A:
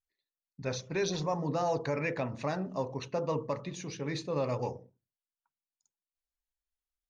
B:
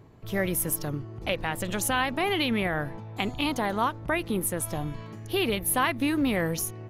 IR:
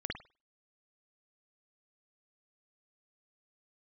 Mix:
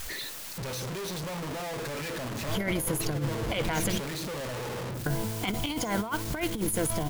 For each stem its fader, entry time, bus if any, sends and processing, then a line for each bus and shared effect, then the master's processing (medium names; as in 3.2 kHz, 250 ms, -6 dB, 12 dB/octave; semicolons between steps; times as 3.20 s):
-1.0 dB, 0.00 s, no send, one-bit comparator; band-stop 750 Hz, Q 21
+3.0 dB, 2.25 s, muted 3.98–5.06 s, send -19.5 dB, rippled EQ curve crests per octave 1.8, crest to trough 10 dB; compression 1.5:1, threshold -29 dBFS, peak gain reduction 4 dB; saturation -20 dBFS, distortion -20 dB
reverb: on, pre-delay 50 ms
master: compressor with a negative ratio -28 dBFS, ratio -0.5